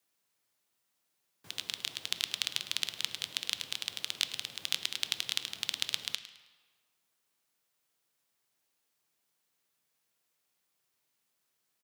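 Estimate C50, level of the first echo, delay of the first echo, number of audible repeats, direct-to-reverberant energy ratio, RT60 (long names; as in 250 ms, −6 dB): 11.5 dB, −16.0 dB, 106 ms, 2, 10.0 dB, 1.6 s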